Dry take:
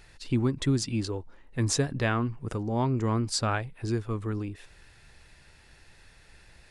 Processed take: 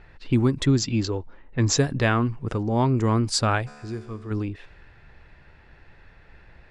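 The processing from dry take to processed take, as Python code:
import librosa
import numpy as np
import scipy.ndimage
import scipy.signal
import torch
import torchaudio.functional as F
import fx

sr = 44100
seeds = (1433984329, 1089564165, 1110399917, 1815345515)

y = fx.env_lowpass(x, sr, base_hz=1800.0, full_db=-23.5)
y = fx.brickwall_lowpass(y, sr, high_hz=7700.0, at=(0.65, 1.78))
y = fx.comb_fb(y, sr, f0_hz=73.0, decay_s=1.7, harmonics='all', damping=0.0, mix_pct=70, at=(3.66, 4.3), fade=0.02)
y = y * librosa.db_to_amplitude(5.5)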